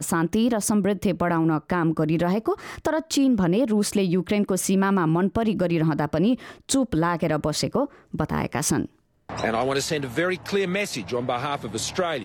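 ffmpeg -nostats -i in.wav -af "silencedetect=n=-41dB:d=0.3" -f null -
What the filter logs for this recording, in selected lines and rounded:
silence_start: 8.86
silence_end: 9.29 | silence_duration: 0.43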